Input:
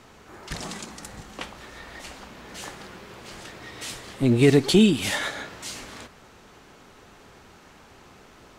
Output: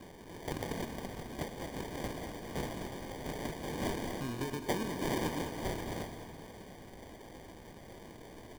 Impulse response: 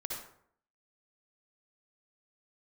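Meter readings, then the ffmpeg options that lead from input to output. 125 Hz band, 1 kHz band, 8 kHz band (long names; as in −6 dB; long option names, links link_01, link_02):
−13.0 dB, −2.0 dB, −11.5 dB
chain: -filter_complex "[0:a]acompressor=threshold=-35dB:ratio=6,lowpass=frequency=3700:width_type=q:width=9,acrusher=samples=33:mix=1:aa=0.000001,aecho=1:1:210|420|630|840|1050|1260|1470:0.266|0.154|0.0895|0.0519|0.0301|0.0175|0.0101,asplit=2[link_01][link_02];[1:a]atrim=start_sample=2205,adelay=123[link_03];[link_02][link_03]afir=irnorm=-1:irlink=0,volume=-14.5dB[link_04];[link_01][link_04]amix=inputs=2:normalize=0,volume=-4dB"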